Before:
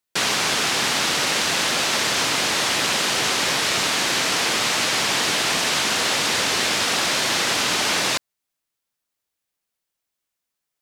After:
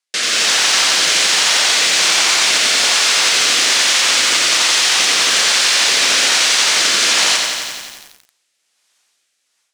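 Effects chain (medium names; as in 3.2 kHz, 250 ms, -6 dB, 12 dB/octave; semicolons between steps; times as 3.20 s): algorithmic reverb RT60 0.7 s, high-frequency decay 0.3×, pre-delay 75 ms, DRR 18 dB; wide varispeed 1.11×; level rider gain up to 15.5 dB; frequency weighting ITU-R 468; rotary cabinet horn 1.2 Hz; treble shelf 2.4 kHz -10.5 dB; peak limiter -13 dBFS, peak gain reduction 13 dB; bit-crushed delay 88 ms, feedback 80%, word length 7-bit, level -5 dB; trim +6.5 dB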